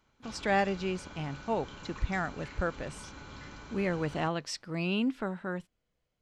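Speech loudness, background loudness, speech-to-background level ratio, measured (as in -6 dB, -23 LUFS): -33.5 LUFS, -47.5 LUFS, 14.0 dB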